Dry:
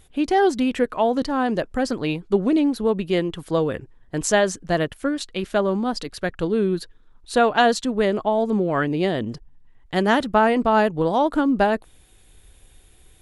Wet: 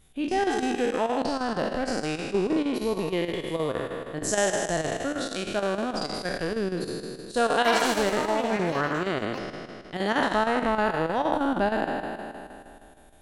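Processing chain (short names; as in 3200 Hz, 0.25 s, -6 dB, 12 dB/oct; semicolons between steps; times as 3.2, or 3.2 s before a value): spectral trails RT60 2.45 s; chopper 6.4 Hz, depth 60%, duty 80%; 7.54–10 echoes that change speed 0.106 s, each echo +6 st, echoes 2, each echo -6 dB; gain -8.5 dB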